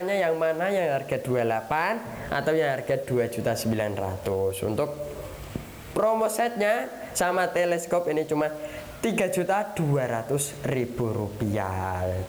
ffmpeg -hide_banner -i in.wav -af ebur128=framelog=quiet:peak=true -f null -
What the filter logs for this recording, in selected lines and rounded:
Integrated loudness:
  I:         -26.6 LUFS
  Threshold: -36.8 LUFS
Loudness range:
  LRA:         2.1 LU
  Threshold: -46.8 LUFS
  LRA low:   -28.0 LUFS
  LRA high:  -25.8 LUFS
True peak:
  Peak:      -12.0 dBFS